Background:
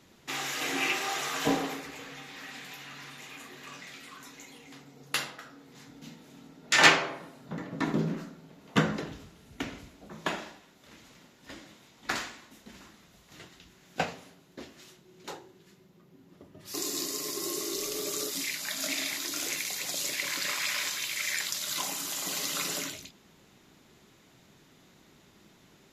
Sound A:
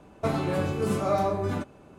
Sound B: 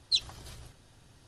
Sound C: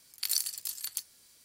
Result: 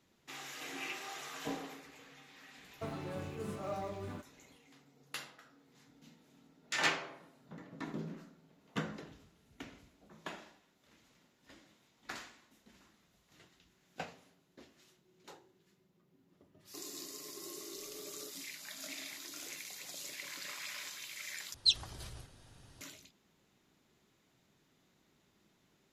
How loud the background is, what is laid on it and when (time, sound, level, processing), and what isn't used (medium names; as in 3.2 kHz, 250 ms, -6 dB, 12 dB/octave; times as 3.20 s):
background -13 dB
2.58 s: add A -15 dB + block-companded coder 7-bit
21.54 s: replace with B -0.5 dB
not used: C